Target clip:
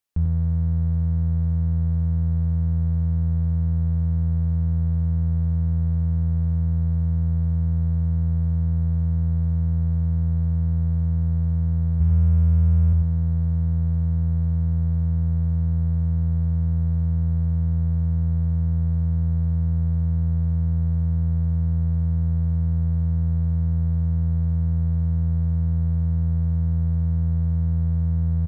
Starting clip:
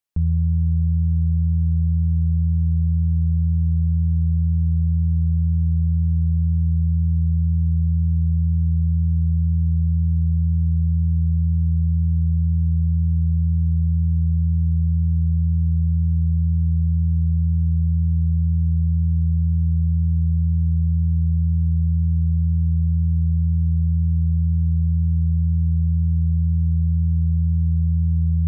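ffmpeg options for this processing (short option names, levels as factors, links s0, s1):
-filter_complex "[0:a]asettb=1/sr,asplit=3[s0][s1][s2];[s0]atrim=end=12.004[s3];[s1]atrim=start=12:end=12.93,asetpts=PTS-STARTPTS,afade=t=in:d=0.004:c=qsin,afade=t=out:st=0.926:d=0.004:c=qsin,equalizer=f=63:t=o:w=0.71:g=11.5[s4];[s2]atrim=start=12.926[s5];[s3][s4]acrossfade=d=0.004:c1=hsin:c2=qsin[s6];[s6][s5]acrossfade=d=0.004:c1=qsin:c2=hsin,asplit=2[s7][s8];[s8]volume=35.5,asoftclip=hard,volume=0.0282,volume=0.562[s9];[s7][s9]amix=inputs=2:normalize=0,asplit=2[s10][s11];[s11]adelay=93.29,volume=0.501,highshelf=f=4000:g=-2.1[s12];[s10][s12]amix=inputs=2:normalize=0,volume=0.794"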